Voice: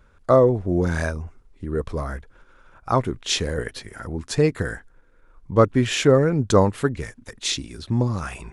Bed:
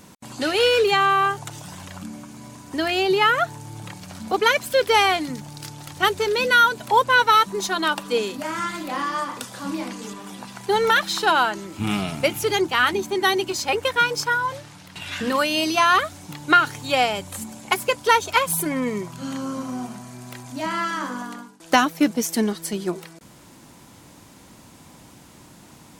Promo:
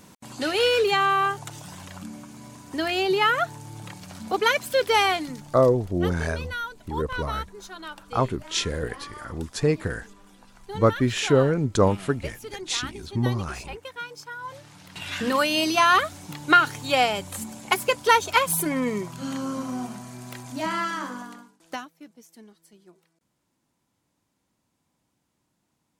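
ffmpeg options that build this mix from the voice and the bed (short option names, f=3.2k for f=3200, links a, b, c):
-filter_complex "[0:a]adelay=5250,volume=-3dB[a];[1:a]volume=12.5dB,afade=t=out:st=5.09:d=0.83:silence=0.211349,afade=t=in:st=14.35:d=0.67:silence=0.16788,afade=t=out:st=20.66:d=1.24:silence=0.0473151[b];[a][b]amix=inputs=2:normalize=0"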